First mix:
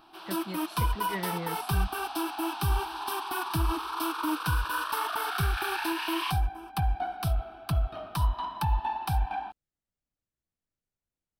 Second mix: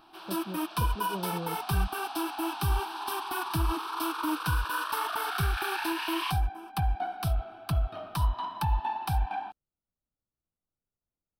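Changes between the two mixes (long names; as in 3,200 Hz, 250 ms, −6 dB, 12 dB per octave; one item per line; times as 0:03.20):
speech: add linear-phase brick-wall low-pass 1,500 Hz
reverb: off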